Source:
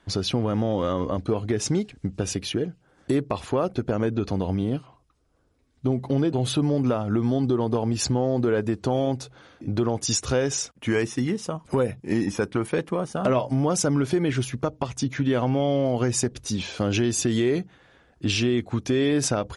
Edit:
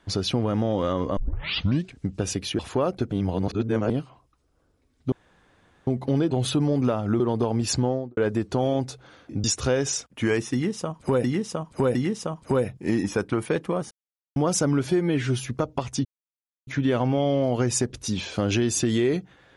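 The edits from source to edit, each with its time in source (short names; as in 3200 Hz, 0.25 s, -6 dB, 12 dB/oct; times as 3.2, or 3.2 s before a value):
1.17 tape start 0.77 s
2.59–3.36 cut
3.89–4.67 reverse
5.89 insert room tone 0.75 s
7.22–7.52 cut
8.16–8.49 studio fade out
9.76–10.09 cut
11.18–11.89 loop, 3 plays
13.14–13.59 mute
14.09–14.47 stretch 1.5×
15.09 insert silence 0.62 s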